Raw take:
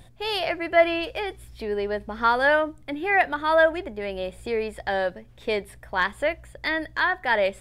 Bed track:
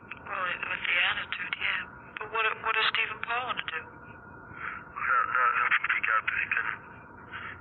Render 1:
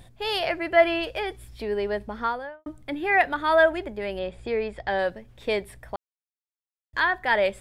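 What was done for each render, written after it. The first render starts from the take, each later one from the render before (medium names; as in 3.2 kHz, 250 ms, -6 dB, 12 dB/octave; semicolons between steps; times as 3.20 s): 1.98–2.66 s: studio fade out; 4.19–4.99 s: distance through air 95 m; 5.96–6.93 s: mute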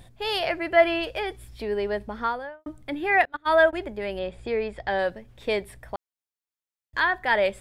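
3.25–3.73 s: gate -25 dBFS, range -26 dB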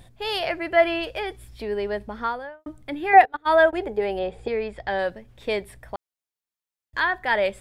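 3.13–4.48 s: small resonant body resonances 450/770 Hz, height 14 dB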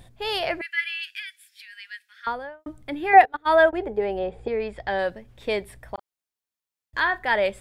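0.61–2.27 s: Chebyshev high-pass 1.6 kHz, order 5; 3.69–4.60 s: treble shelf 2.6 kHz -9 dB; 5.94–7.28 s: doubling 37 ms -14 dB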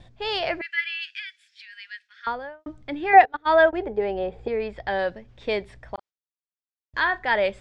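gate with hold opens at -49 dBFS; low-pass 6.4 kHz 24 dB/octave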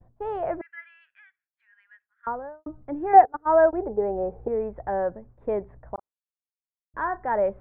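expander -44 dBFS; low-pass 1.2 kHz 24 dB/octave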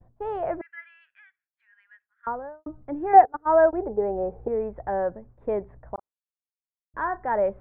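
no audible change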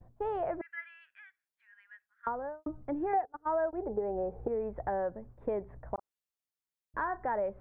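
compression 4:1, threshold -31 dBFS, peak gain reduction 19.5 dB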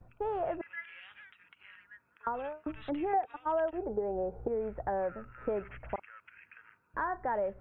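add bed track -27 dB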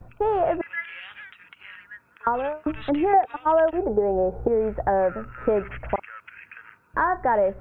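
trim +11.5 dB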